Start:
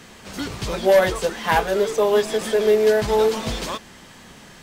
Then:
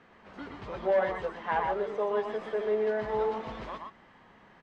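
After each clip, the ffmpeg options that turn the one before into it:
-filter_complex "[0:a]lowpass=1600,lowshelf=f=290:g=-11,asplit=2[s0][s1];[s1]aecho=0:1:121|122:0.376|0.531[s2];[s0][s2]amix=inputs=2:normalize=0,volume=0.376"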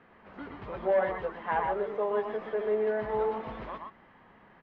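-af "lowpass=2700"

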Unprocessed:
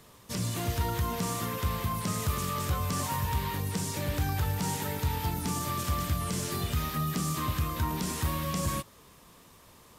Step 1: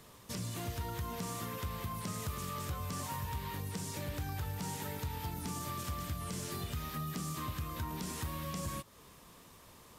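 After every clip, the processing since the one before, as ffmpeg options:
-af "acompressor=threshold=0.01:ratio=2,volume=0.841"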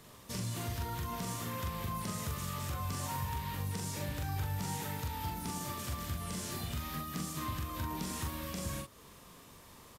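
-filter_complex "[0:a]asplit=2[s0][s1];[s1]adelay=42,volume=0.708[s2];[s0][s2]amix=inputs=2:normalize=0"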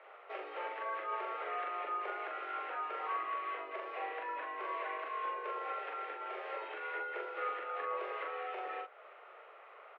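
-af "highpass=f=280:t=q:w=0.5412,highpass=f=280:t=q:w=1.307,lowpass=f=2400:t=q:w=0.5176,lowpass=f=2400:t=q:w=0.7071,lowpass=f=2400:t=q:w=1.932,afreqshift=190,volume=1.58"

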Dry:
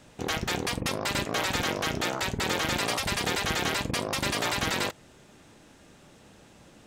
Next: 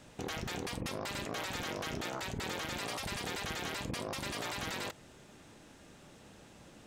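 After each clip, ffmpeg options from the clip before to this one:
-af "alimiter=level_in=1.58:limit=0.0631:level=0:latency=1:release=27,volume=0.631,volume=0.794"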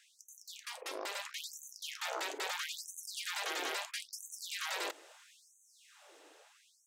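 -filter_complex "[0:a]acrossover=split=280[s0][s1];[s1]dynaudnorm=f=260:g=9:m=1.78[s2];[s0][s2]amix=inputs=2:normalize=0,afftfilt=real='re*gte(b*sr/1024,260*pow(6100/260,0.5+0.5*sin(2*PI*0.76*pts/sr)))':imag='im*gte(b*sr/1024,260*pow(6100/260,0.5+0.5*sin(2*PI*0.76*pts/sr)))':win_size=1024:overlap=0.75,volume=0.708"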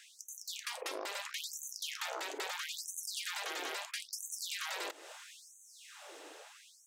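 -af "acompressor=threshold=0.00562:ratio=6,volume=2.51"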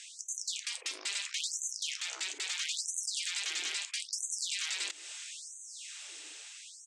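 -af "firequalizer=gain_entry='entry(160,0);entry(530,-15);entry(2300,7);entry(8200,13);entry(15000,-29)':delay=0.05:min_phase=1,alimiter=limit=0.0794:level=0:latency=1:release=122"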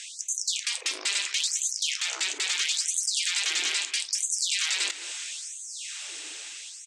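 -filter_complex "[0:a]asplit=2[s0][s1];[s1]adelay=213,lowpass=f=2900:p=1,volume=0.251,asplit=2[s2][s3];[s3]adelay=213,lowpass=f=2900:p=1,volume=0.16[s4];[s0][s2][s4]amix=inputs=3:normalize=0,volume=2.66"

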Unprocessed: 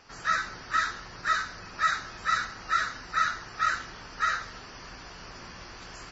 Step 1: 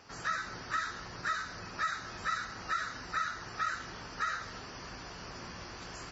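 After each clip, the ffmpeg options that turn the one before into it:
-af "highpass=51,acompressor=threshold=0.0282:ratio=3,equalizer=f=2500:w=0.4:g=-3.5,volume=1.19"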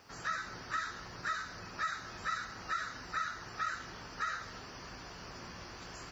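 -af "acrusher=bits=11:mix=0:aa=0.000001,volume=0.75"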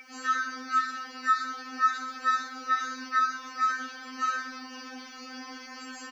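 -af "aecho=1:1:20|46|79.8|123.7|180.9:0.631|0.398|0.251|0.158|0.1,aeval=exprs='val(0)+0.00708*sin(2*PI*2300*n/s)':c=same,afftfilt=real='re*3.46*eq(mod(b,12),0)':imag='im*3.46*eq(mod(b,12),0)':win_size=2048:overlap=0.75,volume=1.88"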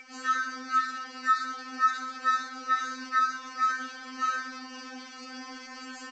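-ar 16000 -c:a g722

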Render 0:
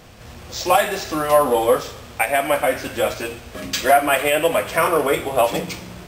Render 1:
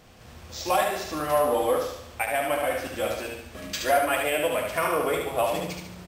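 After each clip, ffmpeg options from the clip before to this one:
-af "aecho=1:1:73|146|219|292|365|438:0.631|0.278|0.122|0.0537|0.0236|0.0104,volume=0.376"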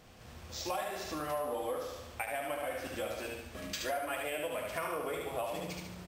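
-af "acompressor=threshold=0.0282:ratio=3,volume=0.596"

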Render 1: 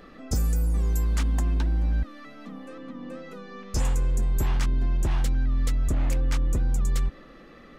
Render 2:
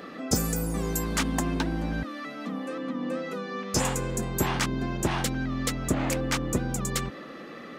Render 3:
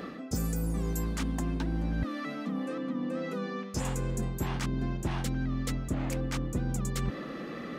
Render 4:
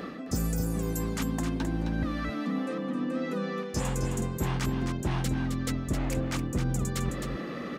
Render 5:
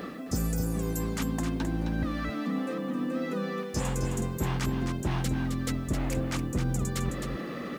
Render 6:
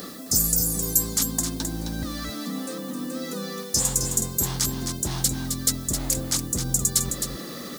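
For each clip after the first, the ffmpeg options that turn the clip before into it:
-af "highpass=170,volume=2.51"
-af "areverse,acompressor=threshold=0.02:ratio=6,areverse,lowshelf=f=240:g=10"
-af "aecho=1:1:263:0.447,volume=1.26"
-af "acrusher=bits=9:mix=0:aa=0.000001"
-af "aexciter=amount=8.4:drive=4.1:freq=3800,volume=0.891"

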